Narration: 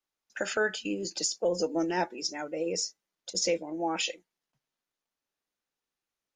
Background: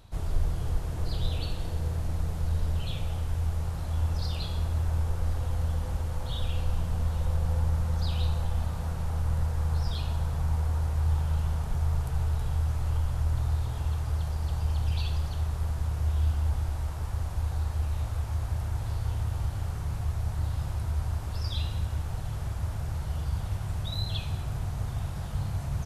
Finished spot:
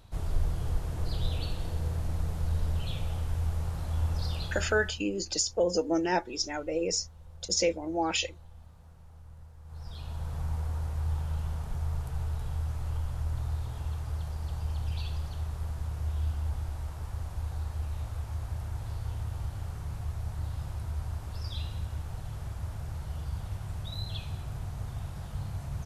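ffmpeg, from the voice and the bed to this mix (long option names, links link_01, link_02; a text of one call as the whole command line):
ffmpeg -i stem1.wav -i stem2.wav -filter_complex "[0:a]adelay=4150,volume=1.5dB[link_01];[1:a]volume=15.5dB,afade=type=out:start_time=4.34:duration=0.68:silence=0.0944061,afade=type=in:start_time=9.64:duration=0.74:silence=0.141254[link_02];[link_01][link_02]amix=inputs=2:normalize=0" out.wav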